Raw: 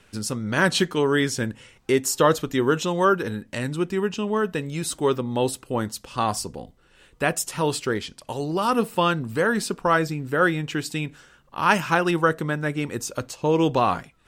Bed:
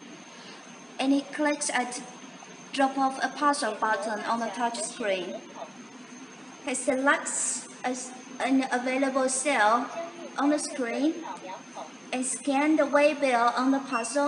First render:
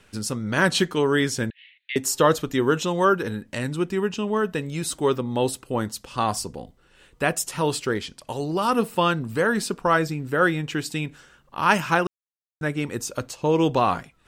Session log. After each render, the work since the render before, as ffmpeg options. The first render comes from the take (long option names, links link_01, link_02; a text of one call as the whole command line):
ffmpeg -i in.wav -filter_complex "[0:a]asettb=1/sr,asplit=3[link_01][link_02][link_03];[link_01]atrim=end=1.504[link_04];[link_02]atrim=start=1.5:end=1.96,asetpts=PTS-STARTPTS,afade=type=in:duration=0.004:curve=qsin,afade=type=out:start_time=0.456:duration=0.004:curve=qsin,asuperpass=centerf=2700:order=12:qfactor=1.2[link_05];[link_03]atrim=start=1.956[link_06];[link_04][link_05]acrossfade=duration=0.004:curve1=hsin:curve2=qsin[link_07];[link_07][link_06]acrossfade=duration=0.004:curve1=qsin:curve2=hsin,asplit=3[link_08][link_09][link_10];[link_08]atrim=end=12.07,asetpts=PTS-STARTPTS,afade=type=out:start_time=12.066:duration=0.004:curve=hsin[link_11];[link_09]atrim=start=12.07:end=12.61,asetpts=PTS-STARTPTS,volume=0[link_12];[link_10]atrim=start=12.61,asetpts=PTS-STARTPTS,afade=type=in:duration=0.004:curve=hsin[link_13];[link_11][link_12][link_13]concat=n=3:v=0:a=1" out.wav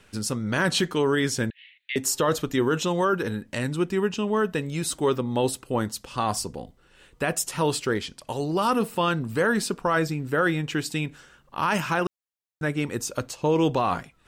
ffmpeg -i in.wav -af "alimiter=limit=-13.5dB:level=0:latency=1:release=11" out.wav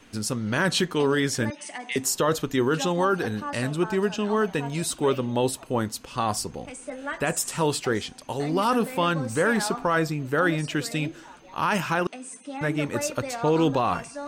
ffmpeg -i in.wav -i bed.wav -filter_complex "[1:a]volume=-10dB[link_01];[0:a][link_01]amix=inputs=2:normalize=0" out.wav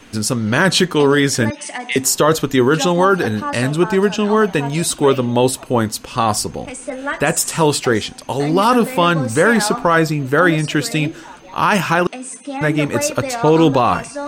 ffmpeg -i in.wav -af "volume=9.5dB" out.wav